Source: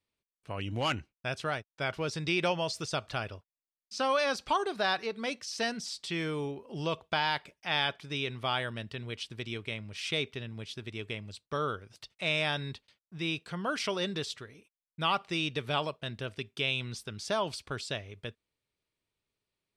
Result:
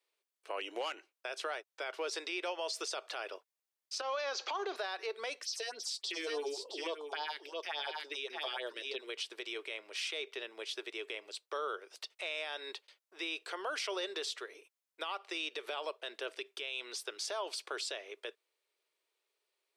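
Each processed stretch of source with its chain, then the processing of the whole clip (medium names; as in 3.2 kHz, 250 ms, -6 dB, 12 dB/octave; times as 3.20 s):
4.01–4.76 s: companding laws mixed up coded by mu + Chebyshev band-pass 120–6700 Hz, order 5 + compression 4:1, threshold -34 dBFS
5.43–9.09 s: phase shifter stages 4, 3.5 Hz, lowest notch 120–2300 Hz + delay 667 ms -9 dB
whole clip: steep high-pass 360 Hz 48 dB/octave; compression, threshold -35 dBFS; peak limiter -31.5 dBFS; trim +3.5 dB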